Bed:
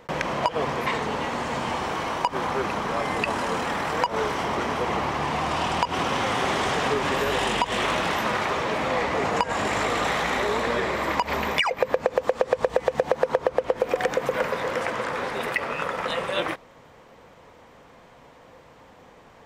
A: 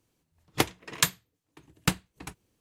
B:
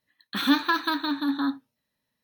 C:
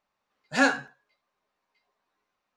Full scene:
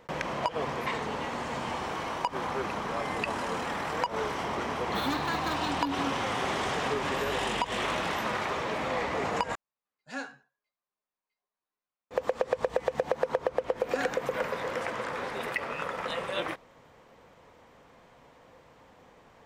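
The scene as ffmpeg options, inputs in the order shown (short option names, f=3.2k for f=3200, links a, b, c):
-filter_complex "[3:a]asplit=2[a][b];[0:a]volume=-6dB[c];[2:a]asoftclip=type=tanh:threshold=-22.5dB[d];[c]asplit=2[e][f];[e]atrim=end=9.554[g];[a]atrim=end=2.56,asetpts=PTS-STARTPTS,volume=-16dB[h];[f]atrim=start=12.106[i];[d]atrim=end=2.23,asetpts=PTS-STARTPTS,volume=-5.5dB,afade=t=in:d=0.004:c=hsin,afade=t=out:st=2.226:d=0.004:c=hsin,adelay=4590[j];[b]atrim=end=2.56,asetpts=PTS-STARTPTS,volume=-14dB,afade=t=in:d=0.004:c=hsin,afade=t=out:st=2.556:d=0.004:c=hsin,adelay=13370[k];[g][h]acrossfade=d=0.004:c1=hsin:c2=hsin[l];[l][i]acrossfade=d=0.004:c1=hsin:c2=hsin[m];[m][j][k]amix=inputs=3:normalize=0"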